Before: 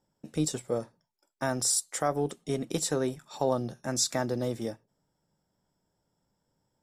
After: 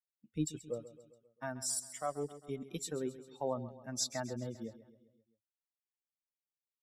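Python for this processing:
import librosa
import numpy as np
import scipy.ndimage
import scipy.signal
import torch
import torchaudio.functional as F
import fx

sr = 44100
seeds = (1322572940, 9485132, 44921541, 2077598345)

y = fx.bin_expand(x, sr, power=2.0)
y = fx.rider(y, sr, range_db=4, speed_s=2.0)
y = fx.echo_feedback(y, sr, ms=133, feedback_pct=56, wet_db=-15.0)
y = y * librosa.db_to_amplitude(-6.5)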